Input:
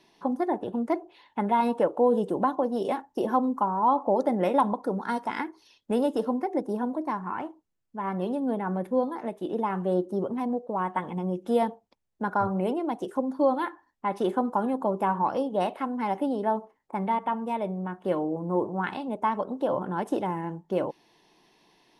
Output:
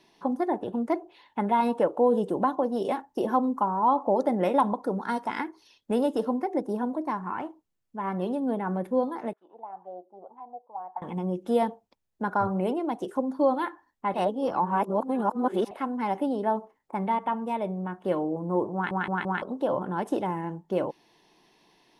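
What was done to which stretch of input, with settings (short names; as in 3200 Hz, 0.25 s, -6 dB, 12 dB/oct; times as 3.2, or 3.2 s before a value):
9.33–11.02 auto-wah 700–1500 Hz, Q 9.3, down, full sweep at -23.5 dBFS
14.14–15.71 reverse
18.74 stutter in place 0.17 s, 4 plays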